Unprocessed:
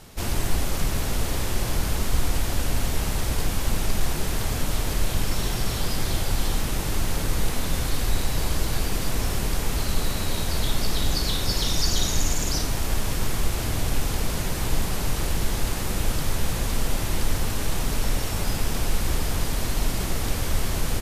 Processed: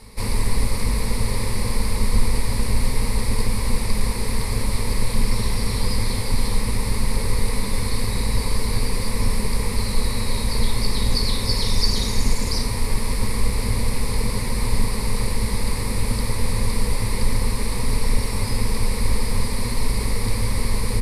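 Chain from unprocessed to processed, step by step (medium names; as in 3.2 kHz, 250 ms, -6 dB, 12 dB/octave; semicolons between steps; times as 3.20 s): octave divider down 2 oct, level +4 dB; rippled EQ curve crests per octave 0.92, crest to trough 13 dB; trim -1 dB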